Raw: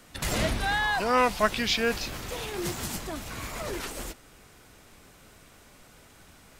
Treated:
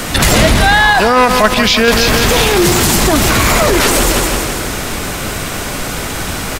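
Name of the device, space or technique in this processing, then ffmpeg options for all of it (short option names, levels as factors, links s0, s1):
loud club master: -filter_complex "[0:a]aecho=1:1:165|330|495|660|825|990|1155:0.266|0.154|0.0895|0.0519|0.0301|0.0175|0.0101,asettb=1/sr,asplit=3[s0][s1][s2];[s0]atrim=end=0.934[s3];[s1]atrim=start=0.93:end=1.88,asetpts=PTS-STARTPTS,afade=t=in:d=0.004:c=qsin,afade=t=out:st=0.946:d=0.004:c=qsin,agate=range=0.398:threshold=0.1:ratio=16:detection=peak[s4];[s2]atrim=start=1.876[s5];[s3][s4]acrossfade=d=0.004:c1=hsin:c2=qsin[s6];[s6][s5]acrossfade=d=0.004:c1=qsin:c2=hsin,acompressor=threshold=0.0282:ratio=2,asoftclip=type=hard:threshold=0.0631,alimiter=level_in=53.1:limit=0.891:release=50:level=0:latency=1,volume=0.891"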